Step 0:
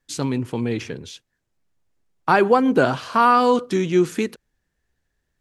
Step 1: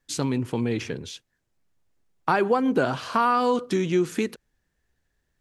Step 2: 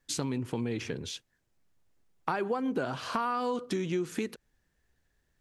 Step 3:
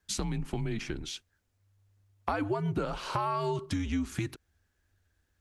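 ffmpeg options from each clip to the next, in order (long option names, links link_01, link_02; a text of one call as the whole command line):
ffmpeg -i in.wav -af "acompressor=threshold=-22dB:ratio=2" out.wav
ffmpeg -i in.wav -af "acompressor=threshold=-32dB:ratio=2.5" out.wav
ffmpeg -i in.wav -af "afreqshift=-99" out.wav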